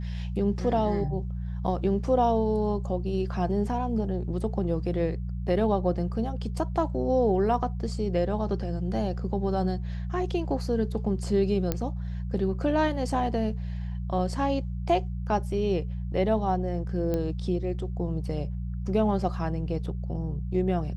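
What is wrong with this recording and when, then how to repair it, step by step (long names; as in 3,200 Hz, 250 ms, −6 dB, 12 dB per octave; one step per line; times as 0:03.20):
mains hum 60 Hz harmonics 3 −32 dBFS
0:11.72: click −12 dBFS
0:17.14: click −17 dBFS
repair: click removal
hum removal 60 Hz, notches 3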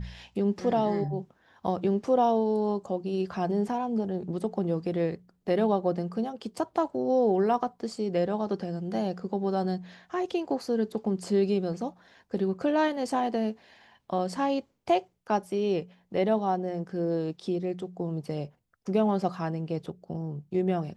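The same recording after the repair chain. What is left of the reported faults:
none of them is left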